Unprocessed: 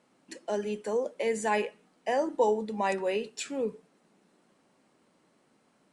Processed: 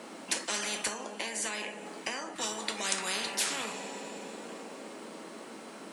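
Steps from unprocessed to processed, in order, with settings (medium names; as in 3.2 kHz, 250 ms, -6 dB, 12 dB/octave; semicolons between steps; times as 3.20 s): high-pass 210 Hz 24 dB/octave; 0.87–2.36 s: compression 5:1, threshold -42 dBFS, peak gain reduction 17 dB; reverberation, pre-delay 3 ms, DRR 7 dB; spectrum-flattening compressor 10:1; trim +3.5 dB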